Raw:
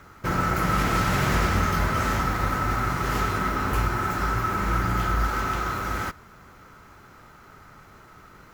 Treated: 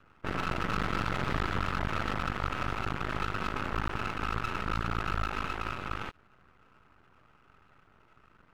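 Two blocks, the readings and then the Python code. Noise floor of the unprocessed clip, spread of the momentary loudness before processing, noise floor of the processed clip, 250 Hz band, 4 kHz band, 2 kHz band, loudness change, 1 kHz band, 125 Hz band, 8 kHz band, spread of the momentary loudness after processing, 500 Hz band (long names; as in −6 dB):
−50 dBFS, 5 LU, −63 dBFS, −8.5 dB, −5.5 dB, −7.0 dB, −8.5 dB, −8.5 dB, −10.0 dB, −15.5 dB, 4 LU, −8.0 dB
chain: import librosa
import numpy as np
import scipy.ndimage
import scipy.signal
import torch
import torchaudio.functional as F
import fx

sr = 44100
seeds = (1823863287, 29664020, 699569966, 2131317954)

y = fx.spec_topn(x, sr, count=64)
y = fx.cheby_harmonics(y, sr, harmonics=(6,), levels_db=(-10,), full_scale_db=-10.0)
y = np.maximum(y, 0.0)
y = y * librosa.db_to_amplitude(-9.0)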